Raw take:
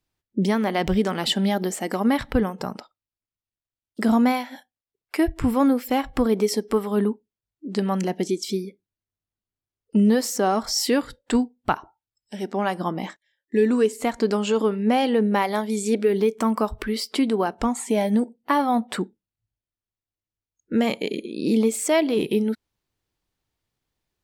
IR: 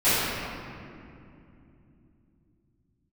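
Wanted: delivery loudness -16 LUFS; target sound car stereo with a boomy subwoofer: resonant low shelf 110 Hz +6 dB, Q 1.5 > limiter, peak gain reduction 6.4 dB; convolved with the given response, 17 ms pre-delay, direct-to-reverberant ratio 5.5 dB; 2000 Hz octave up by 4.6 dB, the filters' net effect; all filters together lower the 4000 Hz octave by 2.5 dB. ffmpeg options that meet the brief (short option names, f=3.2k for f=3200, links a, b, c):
-filter_complex "[0:a]equalizer=f=2k:t=o:g=7,equalizer=f=4k:t=o:g=-6.5,asplit=2[a][b];[1:a]atrim=start_sample=2205,adelay=17[c];[b][c]afir=irnorm=-1:irlink=0,volume=-24.5dB[d];[a][d]amix=inputs=2:normalize=0,lowshelf=f=110:t=q:w=1.5:g=6,volume=8dB,alimiter=limit=-4.5dB:level=0:latency=1"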